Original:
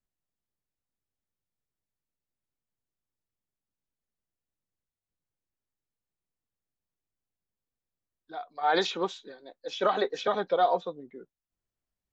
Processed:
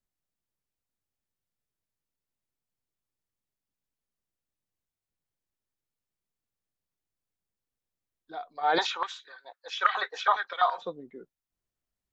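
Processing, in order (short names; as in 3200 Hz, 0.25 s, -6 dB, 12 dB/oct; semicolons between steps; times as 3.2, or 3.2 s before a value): 8.78–10.82 stepped high-pass 12 Hz 880–1900 Hz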